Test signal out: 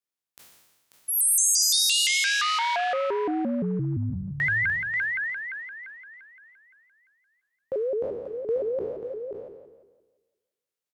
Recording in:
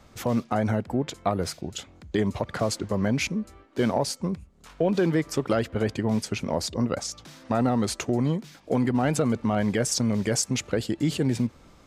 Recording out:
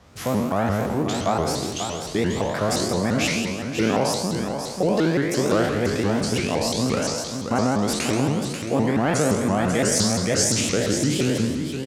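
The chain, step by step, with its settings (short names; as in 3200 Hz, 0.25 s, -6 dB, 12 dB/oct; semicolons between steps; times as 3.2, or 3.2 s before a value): spectral trails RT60 1.32 s; HPF 60 Hz; on a send: echo 0.538 s -7.5 dB; on the sum: shaped vibrato saw up 5.8 Hz, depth 250 cents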